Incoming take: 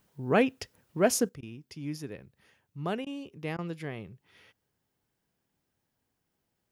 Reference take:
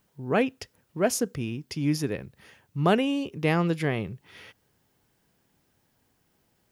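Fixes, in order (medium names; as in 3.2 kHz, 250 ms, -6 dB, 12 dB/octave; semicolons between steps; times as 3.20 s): interpolate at 1.41/3.05/3.57 s, 14 ms; gain correction +11 dB, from 1.29 s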